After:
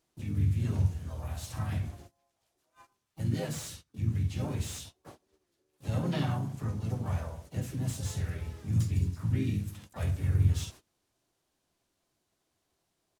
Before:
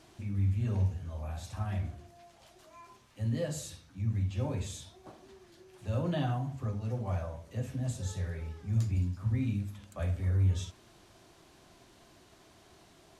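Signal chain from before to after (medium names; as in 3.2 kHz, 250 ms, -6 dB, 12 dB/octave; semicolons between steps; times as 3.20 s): dynamic bell 570 Hz, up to -5 dB, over -49 dBFS, Q 1.4; gate -50 dBFS, range -23 dB; harmony voices -4 st -7 dB, +3 st -9 dB, +7 st -10 dB; treble shelf 6.7 kHz +11 dB; slew-rate limiter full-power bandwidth 65 Hz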